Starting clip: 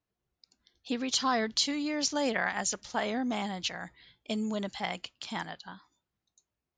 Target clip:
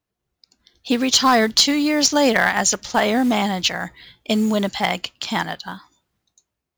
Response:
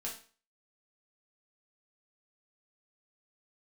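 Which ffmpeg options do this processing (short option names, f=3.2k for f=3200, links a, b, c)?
-af "aeval=exprs='clip(val(0),-1,0.0841)':c=same,dynaudnorm=f=110:g=11:m=8.5dB,acrusher=bits=6:mode=log:mix=0:aa=0.000001,volume=5dB"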